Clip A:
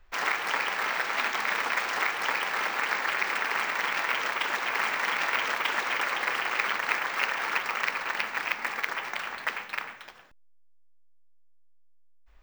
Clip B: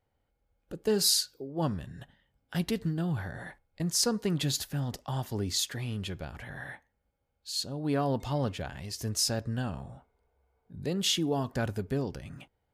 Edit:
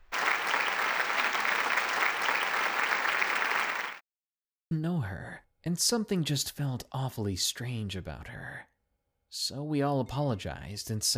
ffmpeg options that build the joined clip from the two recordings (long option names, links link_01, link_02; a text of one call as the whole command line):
ffmpeg -i cue0.wav -i cue1.wav -filter_complex "[0:a]apad=whole_dur=11.17,atrim=end=11.17,asplit=2[link_01][link_02];[link_01]atrim=end=4.01,asetpts=PTS-STARTPTS,afade=type=out:start_time=3.5:duration=0.51:curve=qsin[link_03];[link_02]atrim=start=4.01:end=4.71,asetpts=PTS-STARTPTS,volume=0[link_04];[1:a]atrim=start=2.85:end=9.31,asetpts=PTS-STARTPTS,afade=type=in:duration=0.004:curve=hsin[link_05];[link_03][link_04][link_05]concat=n=3:v=0:a=1" out.wav